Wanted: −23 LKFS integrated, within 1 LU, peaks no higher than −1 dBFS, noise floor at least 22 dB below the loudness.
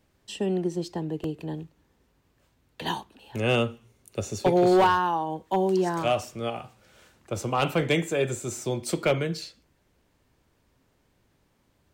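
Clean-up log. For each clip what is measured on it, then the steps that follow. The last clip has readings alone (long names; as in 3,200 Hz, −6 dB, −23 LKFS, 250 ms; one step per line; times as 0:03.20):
share of clipped samples 0.4%; peaks flattened at −14.5 dBFS; number of dropouts 1; longest dropout 2.0 ms; integrated loudness −26.5 LKFS; sample peak −14.5 dBFS; target loudness −23.0 LKFS
→ clipped peaks rebuilt −14.5 dBFS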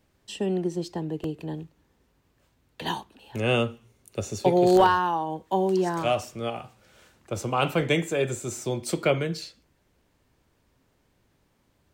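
share of clipped samples 0.0%; number of dropouts 1; longest dropout 2.0 ms
→ repair the gap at 0:01.24, 2 ms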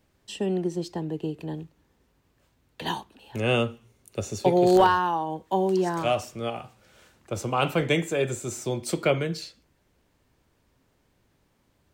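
number of dropouts 0; integrated loudness −26.0 LKFS; sample peak −7.5 dBFS; target loudness −23.0 LKFS
→ level +3 dB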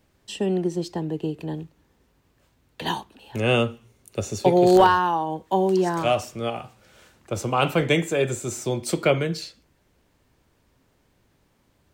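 integrated loudness −23.0 LKFS; sample peak −4.5 dBFS; background noise floor −66 dBFS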